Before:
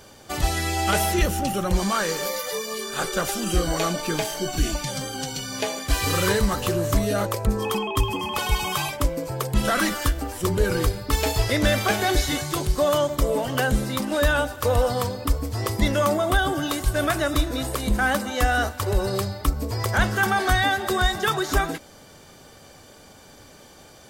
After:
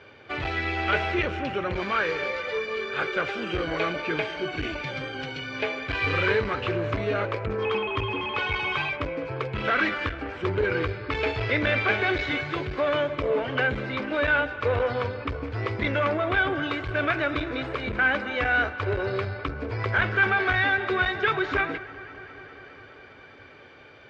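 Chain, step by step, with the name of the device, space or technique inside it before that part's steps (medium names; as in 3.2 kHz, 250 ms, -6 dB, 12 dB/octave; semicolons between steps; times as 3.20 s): analogue delay pedal into a guitar amplifier (bucket-brigade echo 203 ms, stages 4096, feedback 80%, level -20 dB; valve stage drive 16 dB, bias 0.4; cabinet simulation 92–3500 Hz, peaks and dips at 99 Hz +4 dB, 190 Hz -10 dB, 430 Hz +5 dB, 760 Hz -3 dB, 1.5 kHz +6 dB, 2.3 kHz +10 dB); trim -1.5 dB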